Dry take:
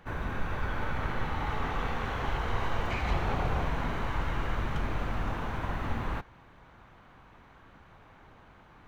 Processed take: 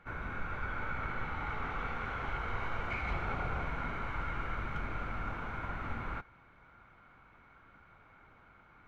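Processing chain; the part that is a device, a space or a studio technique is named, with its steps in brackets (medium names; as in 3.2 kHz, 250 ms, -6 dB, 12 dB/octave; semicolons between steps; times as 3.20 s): inside a helmet (treble shelf 5.4 kHz -9 dB; small resonant body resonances 1.4/2.2 kHz, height 13 dB, ringing for 20 ms); trim -7.5 dB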